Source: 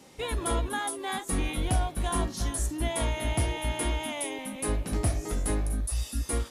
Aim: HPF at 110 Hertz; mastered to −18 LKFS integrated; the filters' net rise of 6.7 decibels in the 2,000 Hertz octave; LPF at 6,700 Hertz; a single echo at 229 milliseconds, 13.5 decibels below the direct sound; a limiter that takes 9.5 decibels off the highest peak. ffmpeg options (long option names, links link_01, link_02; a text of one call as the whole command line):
ffmpeg -i in.wav -af "highpass=110,lowpass=6700,equalizer=frequency=2000:width_type=o:gain=8,alimiter=level_in=1.5dB:limit=-24dB:level=0:latency=1,volume=-1.5dB,aecho=1:1:229:0.211,volume=16.5dB" out.wav